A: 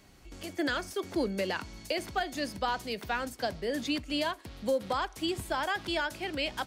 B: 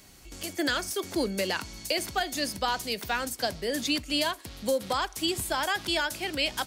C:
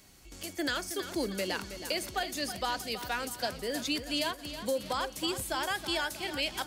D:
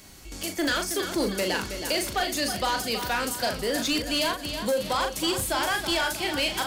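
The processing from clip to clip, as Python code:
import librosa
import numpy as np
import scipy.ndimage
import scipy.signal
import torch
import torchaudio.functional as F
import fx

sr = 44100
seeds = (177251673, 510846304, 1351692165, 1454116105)

y1 = fx.high_shelf(x, sr, hz=4100.0, db=12.0)
y1 = y1 * 10.0 ** (1.5 / 20.0)
y2 = fx.echo_feedback(y1, sr, ms=321, feedback_pct=49, wet_db=-11)
y2 = y2 * 10.0 ** (-4.5 / 20.0)
y3 = fx.doubler(y2, sr, ms=39.0, db=-7)
y3 = 10.0 ** (-28.0 / 20.0) * np.tanh(y3 / 10.0 ** (-28.0 / 20.0))
y3 = y3 * 10.0 ** (8.5 / 20.0)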